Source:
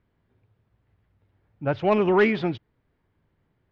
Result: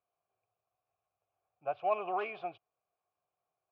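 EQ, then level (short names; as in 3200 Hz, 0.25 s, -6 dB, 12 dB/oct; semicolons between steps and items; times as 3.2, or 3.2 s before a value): vowel filter a; bell 250 Hz -13.5 dB 0.63 oct; 0.0 dB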